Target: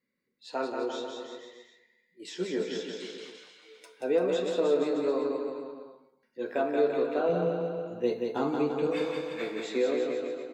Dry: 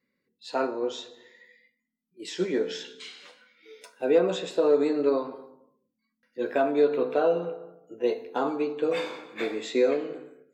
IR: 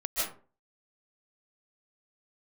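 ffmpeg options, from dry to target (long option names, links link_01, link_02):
-filter_complex "[0:a]asettb=1/sr,asplit=3[link_01][link_02][link_03];[link_01]atrim=end=7.294[link_04];[link_02]atrim=start=7.29:end=8.87,asetpts=PTS-STARTPTS,afade=type=in:duration=0.004:curve=qsin,afade=type=out:start_time=1.576:duration=0.004:curve=qsin,bass=frequency=250:gain=14,treble=frequency=4000:gain=5[link_05];[link_03]atrim=start=8.866[link_06];[link_04][link_05]acrossfade=duration=0.004:curve1=hsin:curve2=qsin[link_07];[link_07][link_06]acrossfade=duration=0.004:curve1=qsin:curve2=hsin,aecho=1:1:180|342|487.8|619|737.1:0.631|0.398|0.251|0.158|0.1,volume=-5dB"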